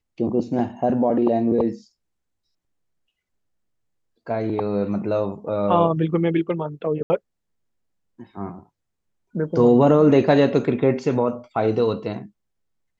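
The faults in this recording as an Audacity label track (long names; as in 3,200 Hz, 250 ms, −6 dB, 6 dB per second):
7.030000	7.100000	drop-out 70 ms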